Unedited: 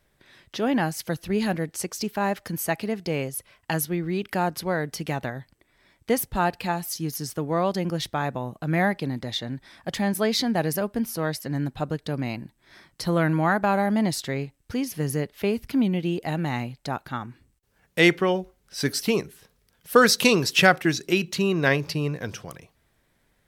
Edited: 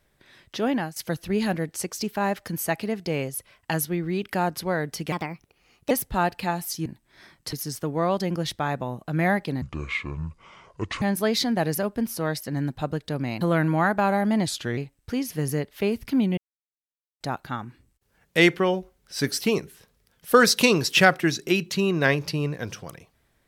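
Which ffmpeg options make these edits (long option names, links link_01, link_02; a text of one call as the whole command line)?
ffmpeg -i in.wav -filter_complex "[0:a]asplit=13[link_01][link_02][link_03][link_04][link_05][link_06][link_07][link_08][link_09][link_10][link_11][link_12][link_13];[link_01]atrim=end=0.96,asetpts=PTS-STARTPTS,afade=type=out:start_time=0.67:duration=0.29:silence=0.199526[link_14];[link_02]atrim=start=0.96:end=5.124,asetpts=PTS-STARTPTS,afade=type=in:duration=0.004:curve=hsin:silence=0.199526[link_15];[link_03]atrim=start=5.12:end=6.12,asetpts=PTS-STARTPTS,asetrate=56007,aresample=44100,atrim=end_sample=34724,asetpts=PTS-STARTPTS[link_16];[link_04]atrim=start=6.116:end=7.072[link_17];[link_05]atrim=start=12.388:end=13.062[link_18];[link_06]atrim=start=7.068:end=9.164[link_19];[link_07]atrim=start=9.16:end=10,asetpts=PTS-STARTPTS,asetrate=26460,aresample=44100[link_20];[link_08]atrim=start=9.996:end=12.392[link_21];[link_09]atrim=start=13.058:end=14.124[link_22];[link_10]atrim=start=14.12:end=14.39,asetpts=PTS-STARTPTS,asetrate=38808,aresample=44100[link_23];[link_11]atrim=start=14.386:end=15.99,asetpts=PTS-STARTPTS,afade=type=out:start_time=1.6:duration=0.004:curve=hsin[link_24];[link_12]atrim=start=15.99:end=16.82,asetpts=PTS-STARTPTS,volume=0[link_25];[link_13]atrim=start=16.82,asetpts=PTS-STARTPTS,afade=type=in:duration=0.004:curve=hsin[link_26];[link_14][link_15]concat=n=2:v=0:a=1[link_27];[link_27][link_16]acrossfade=duration=0.004:curve1=hsin:curve2=hsin[link_28];[link_28][link_17]acrossfade=duration=0.004:curve1=hsin:curve2=hsin[link_29];[link_29][link_18]acrossfade=duration=0.004:curve1=hsin:curve2=hsin[link_30];[link_30][link_19]acrossfade=duration=0.004:curve1=hsin:curve2=hsin[link_31];[link_31][link_20]acrossfade=duration=0.004:curve1=hsin:curve2=hsin[link_32];[link_32][link_21]acrossfade=duration=0.004:curve1=hsin:curve2=hsin[link_33];[link_33][link_22]acrossfade=duration=0.004:curve1=hsin:curve2=hsin[link_34];[link_34][link_23]acrossfade=duration=0.004:curve1=hsin:curve2=hsin[link_35];[link_24][link_25][link_26]concat=n=3:v=0:a=1[link_36];[link_35][link_36]acrossfade=duration=0.004:curve1=hsin:curve2=hsin" out.wav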